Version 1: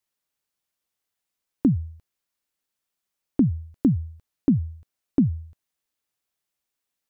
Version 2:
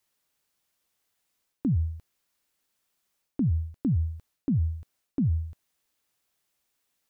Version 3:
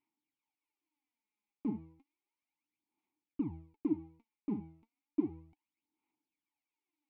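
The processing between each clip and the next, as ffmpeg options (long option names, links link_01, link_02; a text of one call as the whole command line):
ffmpeg -i in.wav -af "alimiter=limit=-16dB:level=0:latency=1,areverse,acompressor=threshold=-29dB:ratio=12,areverse,volume=6.5dB" out.wav
ffmpeg -i in.wav -filter_complex "[0:a]aeval=exprs='max(val(0),0)':channel_layout=same,aphaser=in_gain=1:out_gain=1:delay=4.9:decay=0.7:speed=0.33:type=sinusoidal,asplit=3[link_01][link_02][link_03];[link_01]bandpass=frequency=300:width_type=q:width=8,volume=0dB[link_04];[link_02]bandpass=frequency=870:width_type=q:width=8,volume=-6dB[link_05];[link_03]bandpass=frequency=2240:width_type=q:width=8,volume=-9dB[link_06];[link_04][link_05][link_06]amix=inputs=3:normalize=0,volume=5dB" out.wav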